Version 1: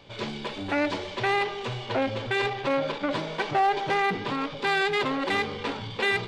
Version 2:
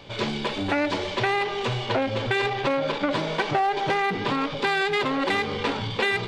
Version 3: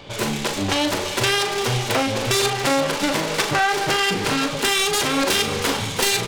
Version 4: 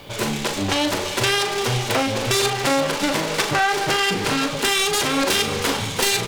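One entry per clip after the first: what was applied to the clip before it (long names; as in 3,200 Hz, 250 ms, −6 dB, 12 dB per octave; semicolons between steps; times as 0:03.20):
downward compressor, threshold −27 dBFS, peak gain reduction 7.5 dB; level +6.5 dB
phase distortion by the signal itself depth 0.45 ms; double-tracking delay 40 ms −8 dB; delay with a high-pass on its return 344 ms, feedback 75%, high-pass 1,900 Hz, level −10 dB; level +4.5 dB
background noise white −56 dBFS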